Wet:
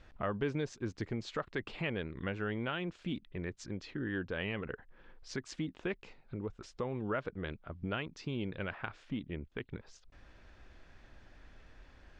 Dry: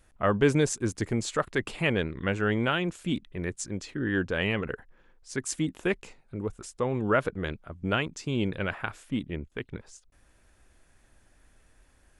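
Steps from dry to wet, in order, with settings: LPF 4900 Hz 24 dB/oct; compressor 2:1, threshold -50 dBFS, peak gain reduction 17.5 dB; gain +4.5 dB

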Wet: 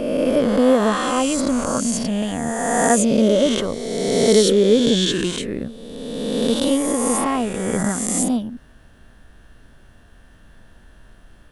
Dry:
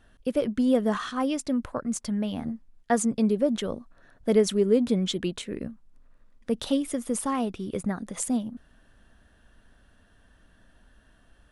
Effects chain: spectral swells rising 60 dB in 2.02 s; added noise brown -53 dBFS; gain +4.5 dB

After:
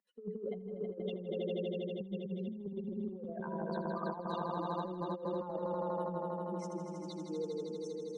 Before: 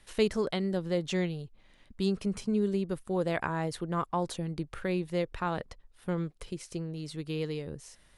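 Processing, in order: spectral contrast raised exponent 3.3; treble ducked by the level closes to 960 Hz, closed at -25.5 dBFS; rippled Chebyshev high-pass 180 Hz, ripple 3 dB; on a send: swelling echo 80 ms, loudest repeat 5, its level -8 dB; on the sum: negative-ratio compressor -34 dBFS, ratio -0.5; gain -3.5 dB

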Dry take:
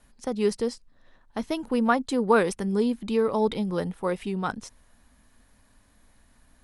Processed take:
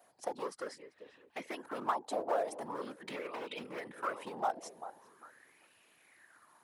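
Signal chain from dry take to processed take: compressor 5:1, threshold -31 dBFS, peak gain reduction 14.5 dB; high shelf 3300 Hz -8 dB; on a send: tape echo 0.395 s, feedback 43%, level -11.5 dB, low-pass 1300 Hz; on the sum: hard clip -29 dBFS, distortion -15 dB; whisperiser; HPF 400 Hz 12 dB/oct; high shelf 6600 Hz +12 dB; LFO bell 0.43 Hz 680–2700 Hz +17 dB; gain -5 dB

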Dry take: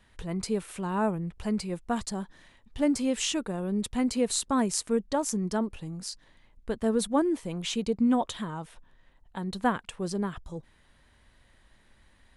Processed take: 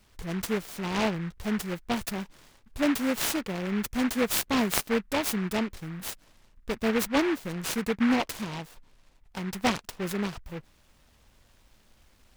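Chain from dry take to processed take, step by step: high shelf 9500 Hz +9.5 dB; noise-modulated delay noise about 1500 Hz, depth 0.15 ms

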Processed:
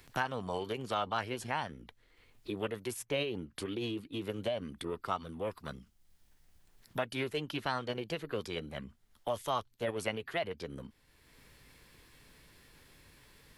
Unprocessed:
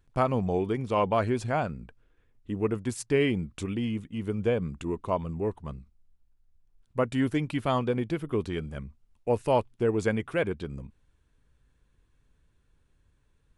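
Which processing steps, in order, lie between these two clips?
formant shift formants +4 st; tilt shelf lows -5.5 dB, about 820 Hz; three-band squash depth 70%; gain -7 dB

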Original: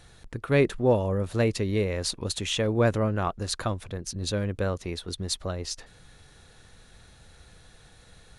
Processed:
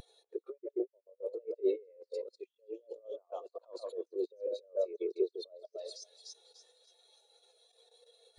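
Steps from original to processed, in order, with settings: high shelf 4000 Hz +4 dB; level quantiser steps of 18 dB; inverse Chebyshev high-pass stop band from 200 Hz, stop band 40 dB; notch 780 Hz, Q 25; on a send: split-band echo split 2800 Hz, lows 0.135 s, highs 0.293 s, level -9 dB; on the sum: negative-ratio compressor -47 dBFS, ratio -0.5; sample leveller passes 2; bell 1600 Hz -10.5 dB 0.56 oct; spectral expander 2.5:1; gain +5.5 dB

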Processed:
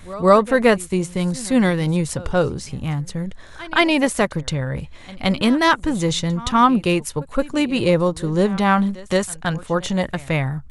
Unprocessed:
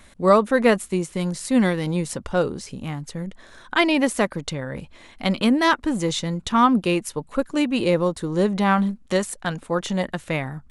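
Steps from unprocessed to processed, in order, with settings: resonant low shelf 160 Hz +6.5 dB, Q 1.5; reverse echo 0.17 s -19.5 dB; gain +3 dB

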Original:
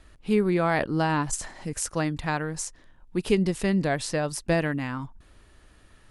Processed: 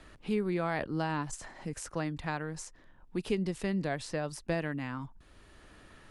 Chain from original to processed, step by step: high shelf 10000 Hz -8.5 dB; three-band squash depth 40%; gain -8 dB

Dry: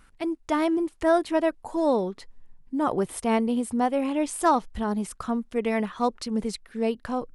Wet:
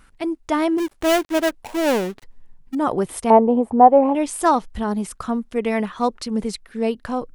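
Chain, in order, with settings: 0.78–2.75 switching dead time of 0.27 ms; 3.3–4.15 EQ curve 190 Hz 0 dB, 840 Hz +13 dB, 1400 Hz -4 dB, 5100 Hz -22 dB; gain +4 dB

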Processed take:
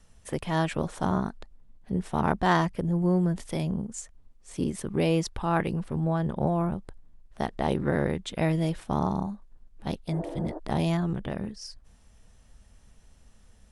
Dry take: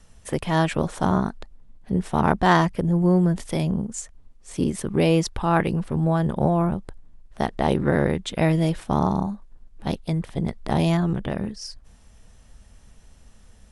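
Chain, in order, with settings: 5.99–6.47 high shelf 8500 Hz -9.5 dB; 10.14–10.56 spectral repair 260–1800 Hz before; gain -5.5 dB

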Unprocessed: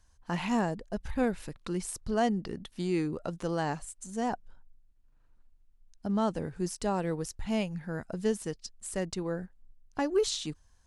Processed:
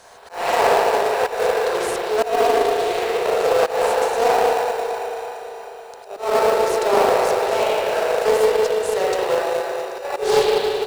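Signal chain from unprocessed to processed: per-bin compression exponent 0.6; steep high-pass 400 Hz 96 dB/oct; spring tank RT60 3.3 s, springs 37/57 ms, chirp 50 ms, DRR -8 dB; added harmonics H 2 -20 dB, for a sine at -8 dBFS; in parallel at -5 dB: sample-rate reducer 3200 Hz, jitter 0%; on the sum: auto swell 0.202 s; on a send: feedback echo 0.667 s, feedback 44%, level -16.5 dB; on the sum: Doppler distortion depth 0.22 ms; gain +3 dB

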